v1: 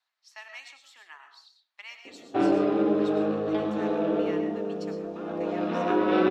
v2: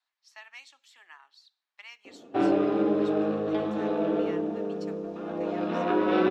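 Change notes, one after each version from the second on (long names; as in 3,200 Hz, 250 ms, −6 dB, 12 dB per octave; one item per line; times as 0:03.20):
reverb: off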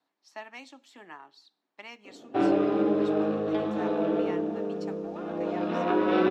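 speech: remove high-pass filter 1,500 Hz 12 dB per octave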